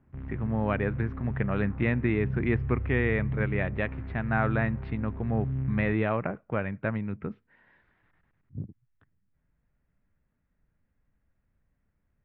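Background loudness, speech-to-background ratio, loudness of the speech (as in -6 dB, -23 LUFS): -35.0 LUFS, 5.0 dB, -30.0 LUFS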